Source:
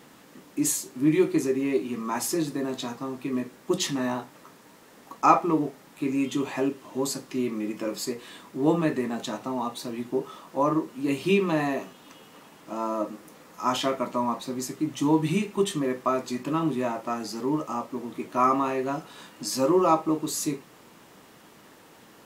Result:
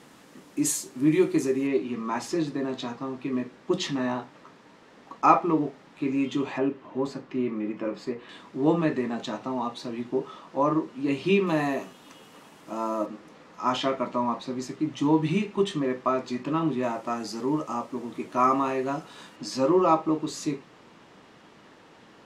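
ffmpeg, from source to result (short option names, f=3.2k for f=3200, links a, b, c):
-af "asetnsamples=n=441:p=0,asendcmd='1.67 lowpass f 4500;6.58 lowpass f 2400;8.29 lowpass f 5000;11.47 lowpass f 12000;13.06 lowpass f 4700;16.83 lowpass f 8900;19.36 lowpass f 4800',lowpass=11k"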